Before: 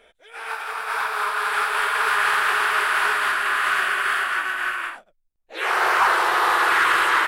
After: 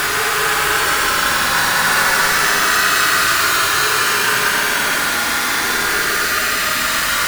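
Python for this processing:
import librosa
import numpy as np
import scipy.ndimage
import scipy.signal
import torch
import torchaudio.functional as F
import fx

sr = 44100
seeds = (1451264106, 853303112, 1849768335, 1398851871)

p1 = np.sign(x) * np.sqrt(np.mean(np.square(x)))
p2 = fx.rotary_switch(p1, sr, hz=0.9, then_hz=6.0, switch_at_s=2.12)
p3 = p2 + fx.echo_single(p2, sr, ms=109, db=-3.5, dry=0)
p4 = fx.mod_noise(p3, sr, seeds[0], snr_db=16)
p5 = fx.paulstretch(p4, sr, seeds[1], factor=34.0, window_s=0.05, from_s=3.09)
y = p5 * librosa.db_to_amplitude(7.5)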